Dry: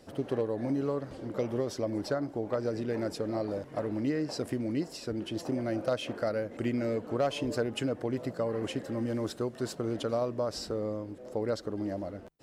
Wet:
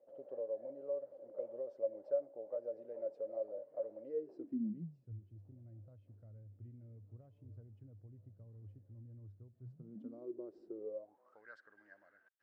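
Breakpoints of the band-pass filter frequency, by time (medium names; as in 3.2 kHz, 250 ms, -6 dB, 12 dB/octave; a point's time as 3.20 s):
band-pass filter, Q 15
4.04 s 560 Hz
5.18 s 100 Hz
9.57 s 100 Hz
10.27 s 360 Hz
10.79 s 360 Hz
11.42 s 1.6 kHz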